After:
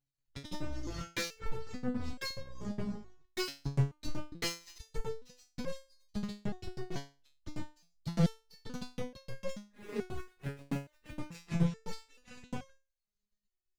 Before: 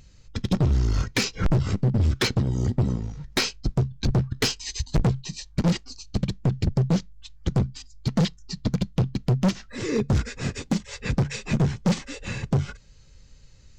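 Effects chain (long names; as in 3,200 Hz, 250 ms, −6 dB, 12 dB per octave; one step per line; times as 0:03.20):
0:09.55–0:11.30: running median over 9 samples
power curve on the samples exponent 2
step-sequenced resonator 2.3 Hz 140–540 Hz
level +3.5 dB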